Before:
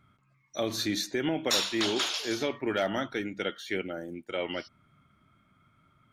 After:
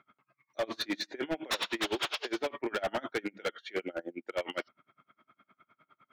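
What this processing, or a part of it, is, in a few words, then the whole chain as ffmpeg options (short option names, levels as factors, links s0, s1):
helicopter radio: -af "highpass=370,lowpass=2700,aeval=exprs='val(0)*pow(10,-31*(0.5-0.5*cos(2*PI*9.8*n/s))/20)':c=same,asoftclip=type=hard:threshold=0.0168,volume=2.82"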